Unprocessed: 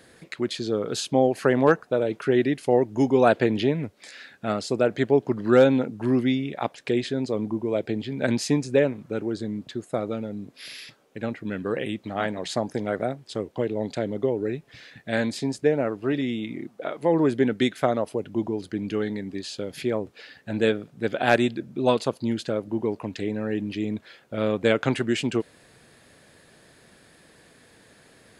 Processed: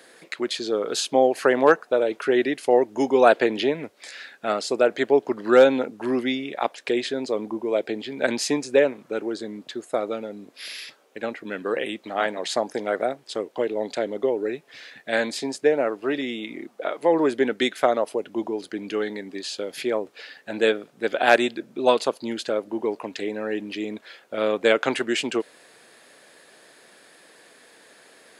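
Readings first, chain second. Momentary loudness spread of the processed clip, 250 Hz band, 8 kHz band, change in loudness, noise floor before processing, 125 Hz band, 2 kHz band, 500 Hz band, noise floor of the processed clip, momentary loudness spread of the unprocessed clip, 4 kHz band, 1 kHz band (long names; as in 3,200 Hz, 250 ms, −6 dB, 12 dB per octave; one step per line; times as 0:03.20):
14 LU, −2.5 dB, +4.0 dB, +1.5 dB, −56 dBFS, −13.5 dB, +4.0 dB, +2.5 dB, −55 dBFS, 13 LU, +4.0 dB, +4.0 dB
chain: high-pass filter 380 Hz 12 dB per octave
level +4 dB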